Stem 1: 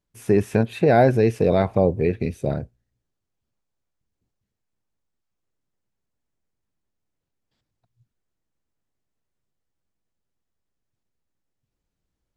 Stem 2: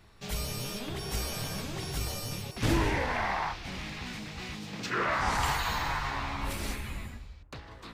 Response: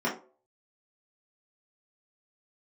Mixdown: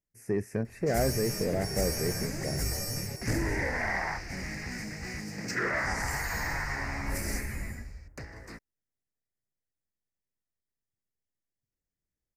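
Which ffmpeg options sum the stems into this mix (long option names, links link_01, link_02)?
-filter_complex "[0:a]volume=-11dB[link_01];[1:a]alimiter=limit=-21.5dB:level=0:latency=1:release=466,adelay=650,volume=2dB[link_02];[link_01][link_02]amix=inputs=2:normalize=0,firequalizer=gain_entry='entry(590,0);entry(1100,-9);entry(1900,6);entry(3400,-25);entry(4900,3)':delay=0.05:min_phase=1,asoftclip=type=tanh:threshold=-16.5dB"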